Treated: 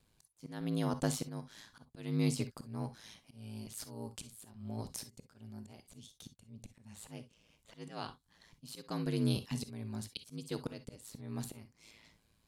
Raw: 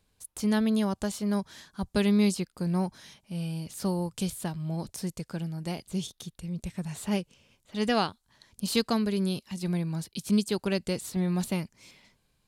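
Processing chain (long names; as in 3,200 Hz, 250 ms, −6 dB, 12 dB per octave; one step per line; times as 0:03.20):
ring modulation 55 Hz
volume swells 648 ms
reverb whose tail is shaped and stops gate 80 ms rising, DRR 11 dB
level +1.5 dB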